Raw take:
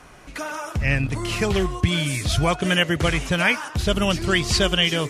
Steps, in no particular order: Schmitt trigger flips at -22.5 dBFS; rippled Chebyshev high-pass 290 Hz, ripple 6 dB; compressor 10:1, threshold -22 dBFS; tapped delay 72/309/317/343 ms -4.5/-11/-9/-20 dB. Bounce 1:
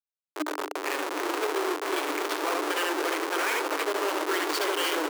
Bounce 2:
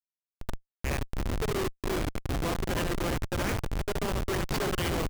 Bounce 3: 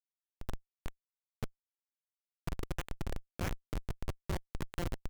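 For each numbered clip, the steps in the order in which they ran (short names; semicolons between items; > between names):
tapped delay > Schmitt trigger > rippled Chebyshev high-pass > compressor; rippled Chebyshev high-pass > compressor > tapped delay > Schmitt trigger; tapped delay > compressor > rippled Chebyshev high-pass > Schmitt trigger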